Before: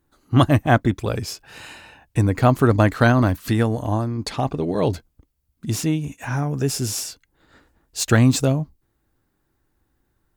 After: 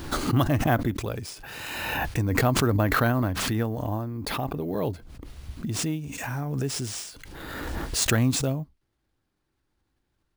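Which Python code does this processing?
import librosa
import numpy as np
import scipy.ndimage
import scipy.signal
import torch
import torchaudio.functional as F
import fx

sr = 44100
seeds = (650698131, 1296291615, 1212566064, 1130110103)

y = fx.high_shelf(x, sr, hz=5100.0, db=-8.5, at=(2.66, 5.79))
y = fx.sample_hold(y, sr, seeds[0], rate_hz=15000.0, jitter_pct=0)
y = fx.pre_swell(y, sr, db_per_s=26.0)
y = F.gain(torch.from_numpy(y), -8.0).numpy()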